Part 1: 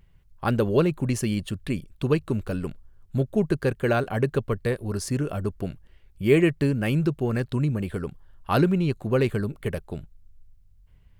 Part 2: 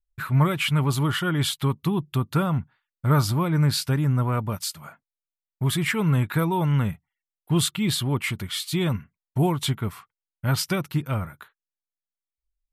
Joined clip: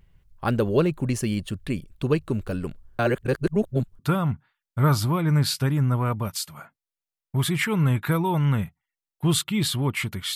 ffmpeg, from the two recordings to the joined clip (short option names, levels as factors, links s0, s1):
-filter_complex "[0:a]apad=whole_dur=10.35,atrim=end=10.35,asplit=2[s0][s1];[s0]atrim=end=2.992[s2];[s1]atrim=start=2.988:end=3.992,asetpts=PTS-STARTPTS,areverse[s3];[1:a]atrim=start=2.258:end=8.62[s4];[s2][s3]acrossfade=d=0.004:c1=hsin:c2=hsin[s5];[s5][s4]acrossfade=d=0.004:c1=hsin:c2=hsin"